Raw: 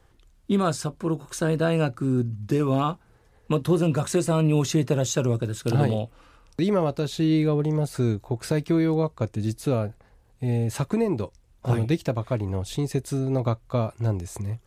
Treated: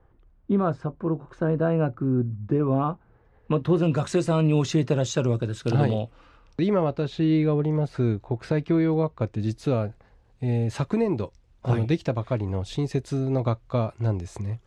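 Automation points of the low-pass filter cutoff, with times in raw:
0:02.86 1,300 Hz
0:03.68 2,800 Hz
0:03.95 5,400 Hz
0:06.02 5,400 Hz
0:06.85 3,100 Hz
0:09.15 3,100 Hz
0:09.55 5,300 Hz

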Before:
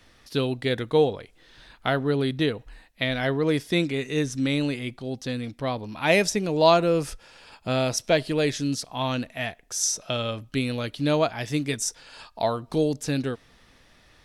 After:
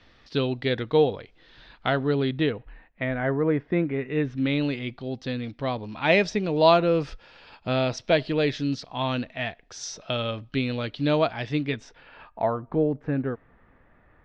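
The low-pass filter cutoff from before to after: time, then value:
low-pass filter 24 dB per octave
0:02.06 4,700 Hz
0:03.13 1,900 Hz
0:03.90 1,900 Hz
0:04.71 4,400 Hz
0:11.40 4,400 Hz
0:12.62 1,800 Hz

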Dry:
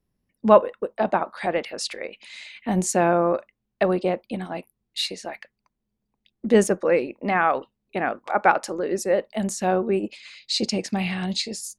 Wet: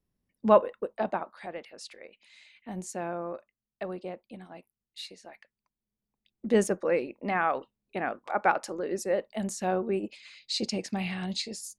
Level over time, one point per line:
0:00.94 −5.5 dB
0:01.50 −15 dB
0:05.22 −15 dB
0:06.53 −6.5 dB

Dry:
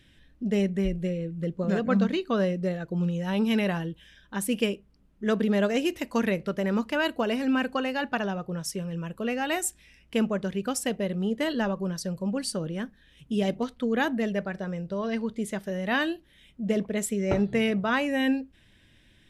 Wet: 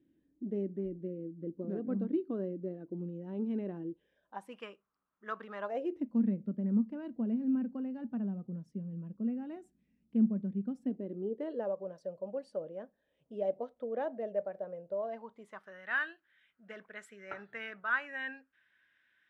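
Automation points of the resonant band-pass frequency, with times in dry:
resonant band-pass, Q 4.3
0:03.86 310 Hz
0:04.61 1,200 Hz
0:05.58 1,200 Hz
0:06.10 220 Hz
0:10.73 220 Hz
0:11.75 590 Hz
0:14.92 590 Hz
0:15.82 1,500 Hz

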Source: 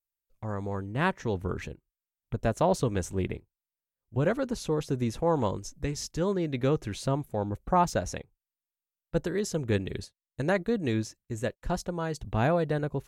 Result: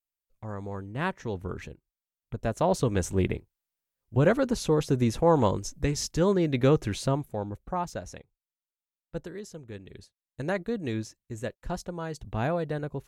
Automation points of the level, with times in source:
0:02.37 −3 dB
0:03.13 +4.5 dB
0:06.90 +4.5 dB
0:07.80 −7.5 dB
0:09.19 −7.5 dB
0:09.74 −15 dB
0:10.44 −3 dB

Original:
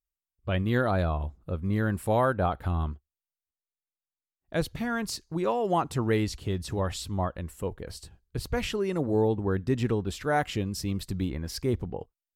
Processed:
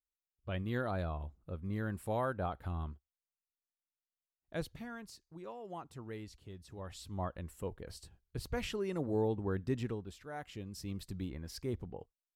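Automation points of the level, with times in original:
0:04.60 −10.5 dB
0:05.14 −19.5 dB
0:06.69 −19.5 dB
0:07.28 −8 dB
0:09.72 −8 dB
0:10.29 −19.5 dB
0:10.92 −10.5 dB

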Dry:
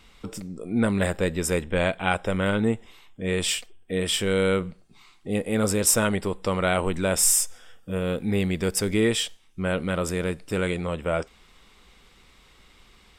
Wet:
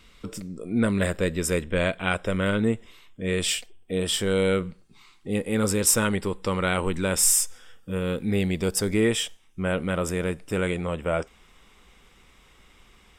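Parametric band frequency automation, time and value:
parametric band −9.5 dB 0.29 octaves
0:03.36 810 Hz
0:04.24 2,700 Hz
0:04.67 670 Hz
0:08.18 670 Hz
0:09.09 4,300 Hz

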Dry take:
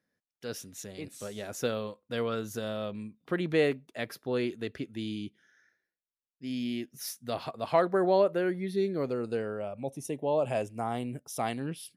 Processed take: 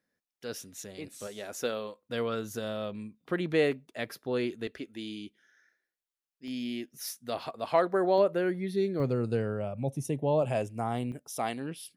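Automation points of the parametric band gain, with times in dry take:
parametric band 120 Hz 1.4 octaves
−4 dB
from 0:01.27 −12 dB
from 0:02.02 −1.5 dB
from 0:04.67 −13 dB
from 0:06.48 −6.5 dB
from 0:08.18 +1 dB
from 0:09.00 +11.5 dB
from 0:10.42 +4.5 dB
from 0:11.12 −5.5 dB

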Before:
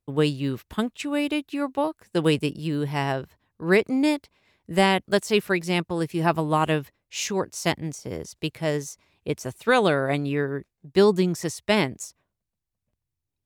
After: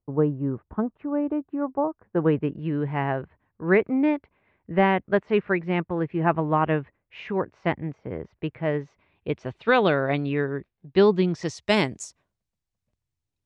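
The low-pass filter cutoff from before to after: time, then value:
low-pass filter 24 dB per octave
0:01.82 1,200 Hz
0:02.67 2,200 Hz
0:08.53 2,200 Hz
0:09.63 3,700 Hz
0:11.22 3,700 Hz
0:11.76 8,700 Hz

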